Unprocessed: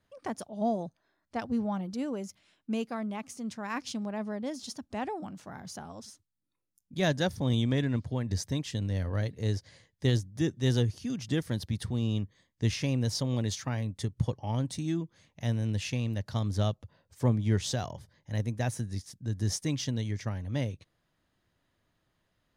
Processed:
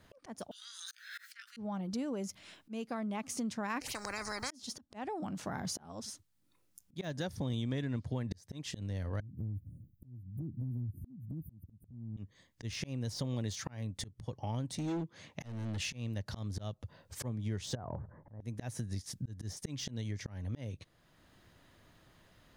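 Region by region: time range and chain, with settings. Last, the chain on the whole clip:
0.51–1.57 s: steep high-pass 1.4 kHz 72 dB/octave + doubling 17 ms -6 dB + swell ahead of each attack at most 31 dB/s
3.81–4.51 s: touch-sensitive phaser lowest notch 170 Hz, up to 2.9 kHz, full sweep at -34.5 dBFS + Butterworth band-stop 3.5 kHz, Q 4.9 + spectrum-flattening compressor 10:1
9.20–12.17 s: inverse Chebyshev band-stop 1.1–5.5 kHz, stop band 70 dB + peaking EQ 440 Hz -13.5 dB 0.49 oct + compression 12:1, threshold -41 dBFS
14.75–15.80 s: high-pass 160 Hz 6 dB/octave + overload inside the chain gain 33.5 dB + treble shelf 6.6 kHz -9.5 dB
17.75–18.41 s: steep low-pass 1.4 kHz + compression 10:1, threshold -37 dBFS
whole clip: de-esser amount 85%; slow attack 783 ms; compression 5:1, threshold -48 dBFS; trim +12.5 dB

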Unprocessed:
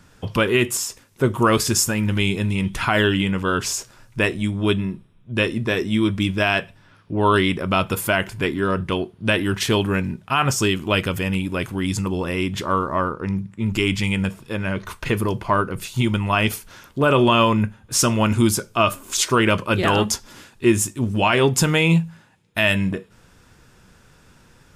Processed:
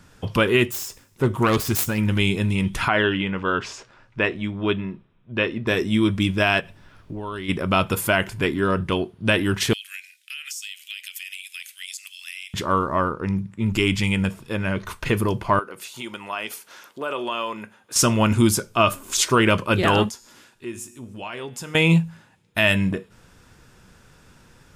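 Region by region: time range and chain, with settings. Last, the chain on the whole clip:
0.64–1.98 s: self-modulated delay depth 0.14 ms + bass shelf 150 Hz +4.5 dB + feedback comb 93 Hz, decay 0.85 s, mix 30%
2.88–5.67 s: low-pass 3 kHz + bass shelf 220 Hz -8.5 dB
6.60–7.48 s: compression 5:1, threshold -29 dBFS + added noise brown -51 dBFS
9.73–12.54 s: steep high-pass 2.1 kHz + tilt EQ +2 dB/octave + compression 10:1, threshold -30 dBFS
15.59–17.96 s: high-pass 410 Hz + compression 1.5:1, threshold -40 dBFS
20.09–21.75 s: bass shelf 130 Hz -11.5 dB + feedback comb 120 Hz, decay 0.66 s, mix 50% + compression 1.5:1, threshold -47 dBFS
whole clip: none

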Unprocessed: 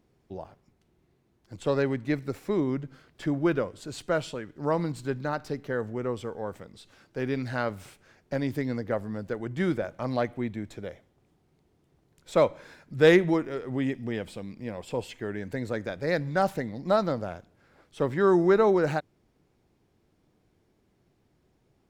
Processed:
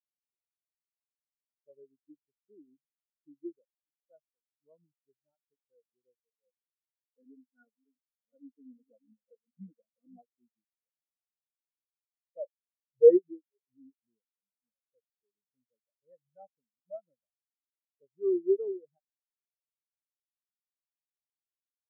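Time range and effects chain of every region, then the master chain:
6.46–10.22 s: chunks repeated in reverse 381 ms, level -5.5 dB + comb 4.2 ms, depth 79%
whole clip: transient shaper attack -1 dB, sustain -5 dB; spectral contrast expander 4:1

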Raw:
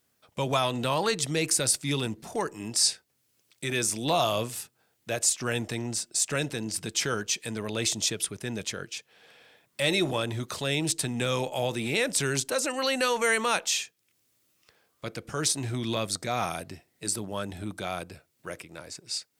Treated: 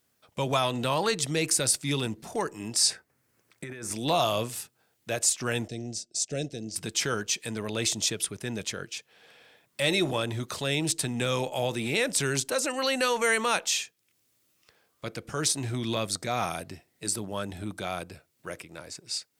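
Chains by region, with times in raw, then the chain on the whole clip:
2.90–3.92 s: resonant high shelf 2.4 kHz -8.5 dB, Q 1.5 + compressor with a negative ratio -38 dBFS
5.68–6.76 s: FFT filter 720 Hz 0 dB, 1 kHz -27 dB, 1.5 kHz -14 dB, 5.9 kHz +2 dB, 14 kHz -17 dB + upward expansion, over -42 dBFS
whole clip: none

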